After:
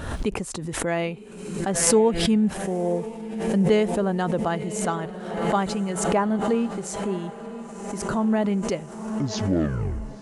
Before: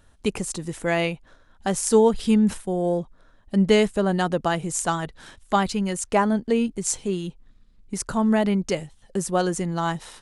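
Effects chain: tape stop at the end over 1.38 s; HPF 73 Hz 6 dB/oct; high shelf 2600 Hz -10 dB; diffused feedback echo 1 s, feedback 59%, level -13.5 dB; backwards sustainer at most 50 dB/s; gain -1.5 dB

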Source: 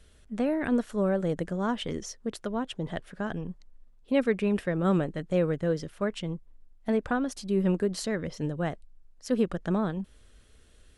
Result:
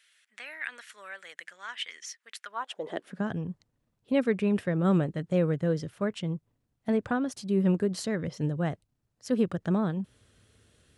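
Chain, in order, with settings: high-pass sweep 2000 Hz -> 110 Hz, 2.4–3.32; gain -1.5 dB

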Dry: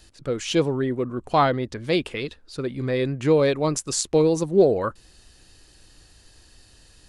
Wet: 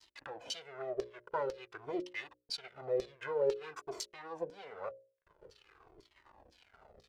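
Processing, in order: minimum comb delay 2 ms; upward compressor, threshold -23 dBFS; expander -33 dBFS; backlash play -32.5 dBFS; compressor 2.5:1, threshold -33 dBFS, peak gain reduction 13.5 dB; LFO band-pass saw down 2 Hz 400–5400 Hz; bell 390 Hz +5.5 dB 0.57 oct; notches 60/120/180/240/300/360/420/480/540/600 Hz; cascading flanger falling 0.49 Hz; gain +6 dB

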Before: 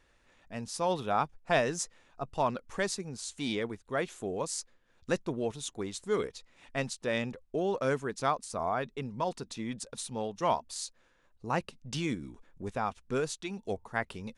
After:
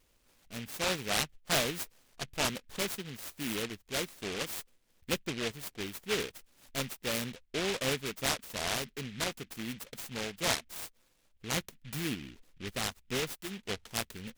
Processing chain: noise-modulated delay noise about 2400 Hz, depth 0.27 ms; gain -2.5 dB

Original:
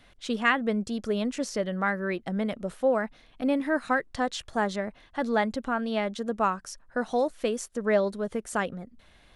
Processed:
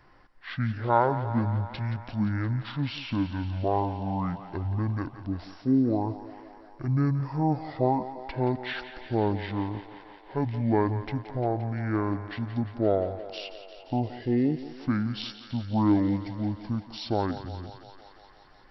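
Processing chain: on a send: thinning echo 87 ms, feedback 78%, high-pass 630 Hz, level -12 dB; on the sum: speed mistake 15 ips tape played at 7.5 ips

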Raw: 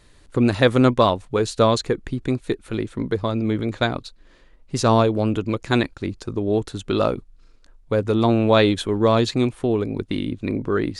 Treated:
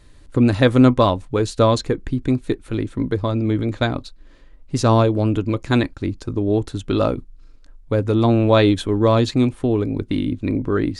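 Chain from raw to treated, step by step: low shelf 260 Hz +7 dB; on a send: reverb RT60 0.15 s, pre-delay 3 ms, DRR 14 dB; on the sum: gain -1 dB

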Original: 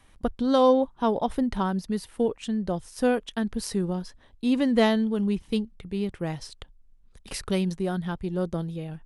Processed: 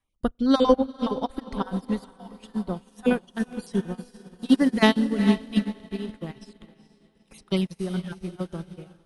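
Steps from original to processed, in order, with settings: random spectral dropouts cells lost 26%; dynamic EQ 620 Hz, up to -6 dB, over -38 dBFS, Q 1.3; on a send: diffused feedback echo 0.45 s, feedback 65%, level -7.5 dB; on the sum: spring tank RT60 2.3 s, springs 33 ms, DRR 20 dB; upward expander 2.5:1, over -42 dBFS; gain +9 dB

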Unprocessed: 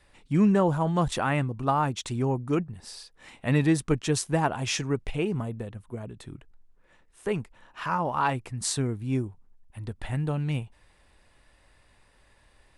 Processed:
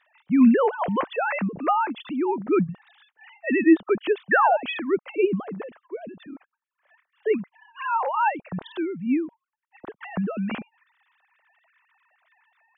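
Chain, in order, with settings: sine-wave speech; painted sound fall, 4.31–4.57, 570–1900 Hz -22 dBFS; gain +3 dB

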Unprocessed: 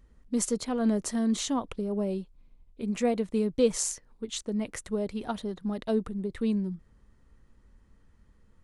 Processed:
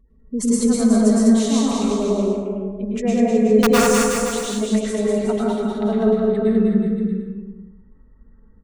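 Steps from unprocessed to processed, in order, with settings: spectral gate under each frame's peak -30 dB strong; comb 4.6 ms, depth 51%; wrapped overs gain 13 dB; bouncing-ball echo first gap 0.2 s, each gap 0.85×, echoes 5; plate-style reverb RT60 1 s, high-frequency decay 0.55×, pre-delay 95 ms, DRR -5.5 dB

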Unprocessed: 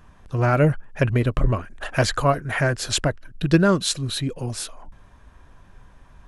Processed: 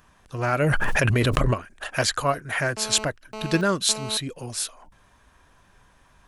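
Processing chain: tilt +2 dB/oct; 0.62–1.54 fast leveller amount 100%; 2.77–4.17 GSM buzz -32 dBFS; gain -2.5 dB

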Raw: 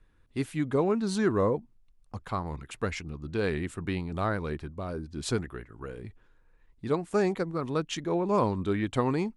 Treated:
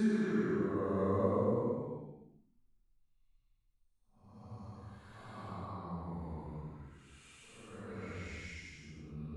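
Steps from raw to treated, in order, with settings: dynamic EQ 200 Hz, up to +5 dB, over -41 dBFS, Q 1; level quantiser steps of 12 dB; Paulstretch 4.8×, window 0.25 s, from 1.18; gain -7 dB

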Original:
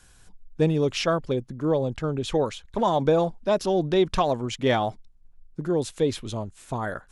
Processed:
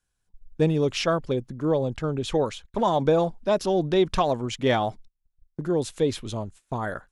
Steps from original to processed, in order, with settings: gate -43 dBFS, range -24 dB

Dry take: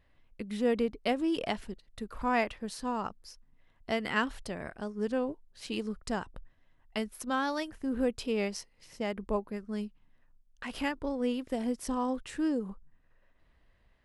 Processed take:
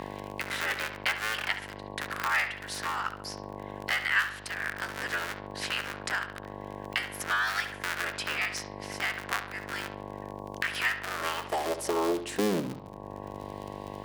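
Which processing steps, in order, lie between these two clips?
cycle switcher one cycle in 3, inverted; high-pass sweep 1600 Hz -> 70 Hz, 11.04–13.3; buzz 50 Hz, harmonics 22, -51 dBFS -2 dB/oct; analogue delay 69 ms, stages 2048, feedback 32%, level -11 dB; three-band squash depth 70%; gain +4 dB

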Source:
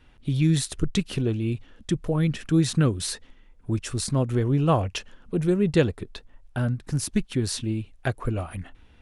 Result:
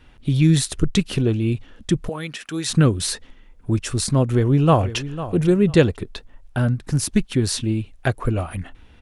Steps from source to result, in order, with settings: 2.09–2.7 HPF 1100 Hz 6 dB/oct; 4.22–4.96 echo throw 0.5 s, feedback 20%, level -13.5 dB; gain +5.5 dB

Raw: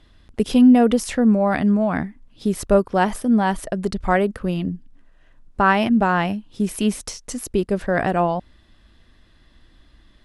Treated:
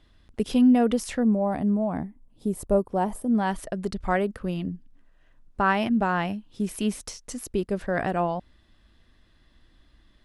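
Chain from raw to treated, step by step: 1.23–3.35 band shelf 2800 Hz -11 dB 2.6 oct; gain -6 dB

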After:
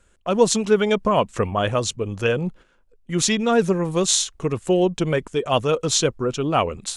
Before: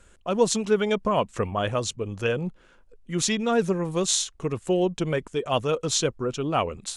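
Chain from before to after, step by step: gate -45 dBFS, range -9 dB; gain +4.5 dB

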